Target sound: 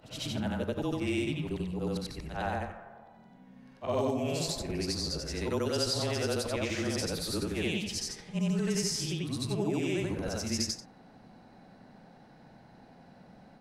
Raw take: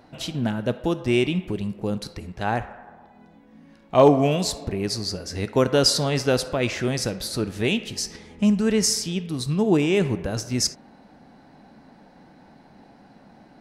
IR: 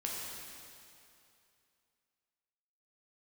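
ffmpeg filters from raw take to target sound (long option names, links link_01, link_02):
-filter_complex "[0:a]afftfilt=real='re':imag='-im':win_size=8192:overlap=0.75,afreqshift=-24,acrossover=split=190|4900[link_01][link_02][link_03];[link_01]acompressor=threshold=-38dB:ratio=4[link_04];[link_02]acompressor=threshold=-30dB:ratio=4[link_05];[link_03]acompressor=threshold=-37dB:ratio=4[link_06];[link_04][link_05][link_06]amix=inputs=3:normalize=0"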